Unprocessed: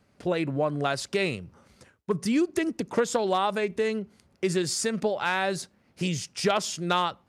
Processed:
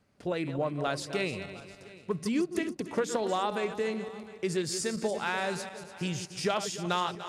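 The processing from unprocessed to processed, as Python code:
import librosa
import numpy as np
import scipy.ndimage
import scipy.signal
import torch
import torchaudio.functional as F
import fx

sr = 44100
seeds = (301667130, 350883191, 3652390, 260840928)

p1 = fx.reverse_delay_fb(x, sr, ms=146, feedback_pct=57, wet_db=-10)
p2 = p1 + fx.echo_single(p1, sr, ms=705, db=-20.0, dry=0)
y = p2 * librosa.db_to_amplitude(-5.0)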